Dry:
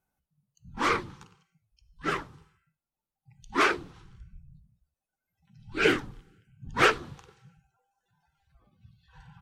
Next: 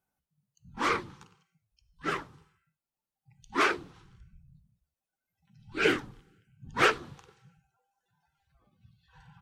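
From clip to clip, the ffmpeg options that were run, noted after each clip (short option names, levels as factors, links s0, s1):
-af "lowshelf=f=67:g=-8,volume=0.794"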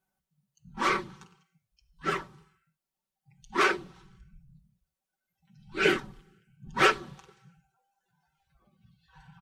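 -af "aecho=1:1:5.3:0.65"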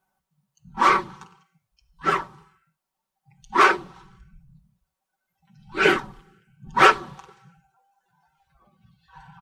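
-af "equalizer=f=960:w=1.2:g=9,volume=1.5"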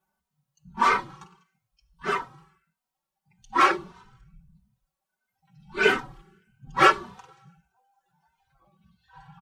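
-filter_complex "[0:a]asplit=2[s0][s1];[s1]adelay=3.1,afreqshift=1.6[s2];[s0][s2]amix=inputs=2:normalize=1"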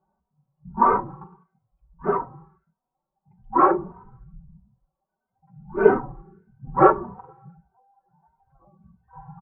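-af "lowpass=f=1000:w=0.5412,lowpass=f=1000:w=1.3066,volume=2.51"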